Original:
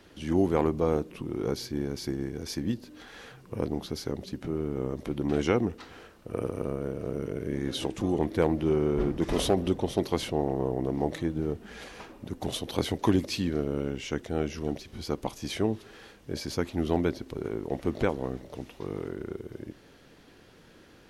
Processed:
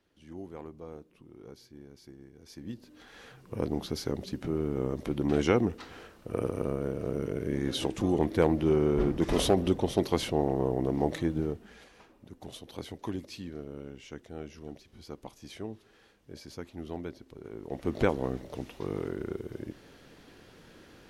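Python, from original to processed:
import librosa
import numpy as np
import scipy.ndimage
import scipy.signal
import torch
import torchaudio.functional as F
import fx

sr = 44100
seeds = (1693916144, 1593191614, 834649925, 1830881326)

y = fx.gain(x, sr, db=fx.line((2.36, -18.5), (2.81, -7.5), (3.81, 0.5), (11.39, 0.5), (11.88, -12.0), (17.42, -12.0), (18.03, 1.0)))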